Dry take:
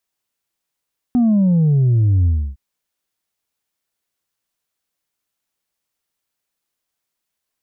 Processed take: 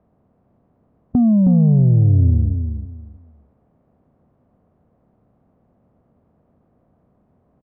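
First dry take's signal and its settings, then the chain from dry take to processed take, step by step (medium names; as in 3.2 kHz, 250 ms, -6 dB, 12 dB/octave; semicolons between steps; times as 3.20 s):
sub drop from 250 Hz, over 1.41 s, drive 2 dB, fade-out 0.30 s, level -11.5 dB
spectral levelling over time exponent 0.6; low-pass 1 kHz 12 dB/octave; on a send: feedback delay 317 ms, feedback 24%, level -7 dB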